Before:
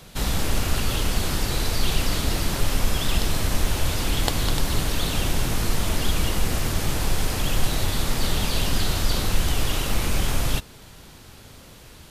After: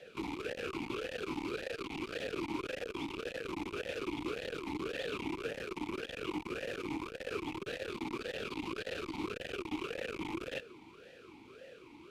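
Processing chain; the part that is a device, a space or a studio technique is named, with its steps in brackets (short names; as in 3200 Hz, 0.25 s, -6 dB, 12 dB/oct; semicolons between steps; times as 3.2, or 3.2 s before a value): talk box (tube stage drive 27 dB, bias 0.55; vowel sweep e-u 1.8 Hz); gain +9 dB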